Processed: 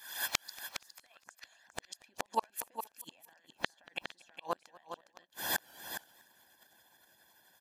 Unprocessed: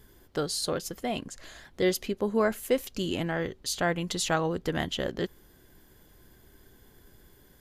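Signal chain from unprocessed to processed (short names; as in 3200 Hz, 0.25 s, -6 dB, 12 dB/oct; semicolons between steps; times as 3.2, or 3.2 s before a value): recorder AGC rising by 73 dB/s; HPF 1100 Hz 12 dB/oct, from 1.44 s 490 Hz; comb 1.2 ms, depth 87%; harmonic-percussive split harmonic -18 dB; compressor 20:1, threshold -35 dBFS, peak gain reduction 18 dB; flipped gate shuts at -31 dBFS, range -40 dB; echo 0.411 s -9 dB; warbling echo 0.237 s, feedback 37%, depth 122 cents, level -23 dB; gain +14 dB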